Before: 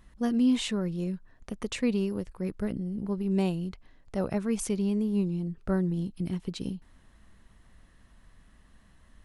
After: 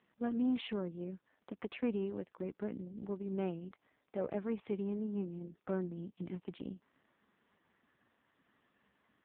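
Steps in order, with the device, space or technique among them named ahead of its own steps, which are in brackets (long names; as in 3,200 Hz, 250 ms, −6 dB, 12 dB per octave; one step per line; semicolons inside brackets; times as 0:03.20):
0:00.69–0:01.10: dynamic equaliser 120 Hz, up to +3 dB, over −53 dBFS, Q 3.1
telephone (band-pass filter 270–3,000 Hz; soft clipping −22 dBFS, distortion −20 dB; level −3 dB; AMR narrowband 5.15 kbit/s 8,000 Hz)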